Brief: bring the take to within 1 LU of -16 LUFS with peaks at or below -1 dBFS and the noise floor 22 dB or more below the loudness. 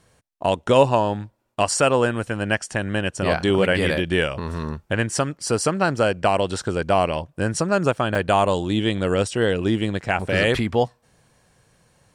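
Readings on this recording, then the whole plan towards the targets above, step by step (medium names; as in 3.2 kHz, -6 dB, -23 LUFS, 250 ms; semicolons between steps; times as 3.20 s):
dropouts 1; longest dropout 3.5 ms; loudness -21.5 LUFS; peak level -3.5 dBFS; loudness target -16.0 LUFS
-> interpolate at 8.15 s, 3.5 ms; trim +5.5 dB; peak limiter -1 dBFS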